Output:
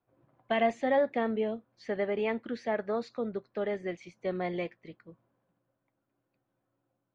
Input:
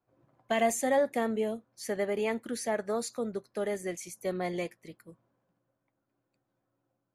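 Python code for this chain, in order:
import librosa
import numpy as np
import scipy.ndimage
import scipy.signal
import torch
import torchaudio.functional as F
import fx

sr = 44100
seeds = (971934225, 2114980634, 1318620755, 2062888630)

y = scipy.signal.sosfilt(scipy.signal.butter(4, 3700.0, 'lowpass', fs=sr, output='sos'), x)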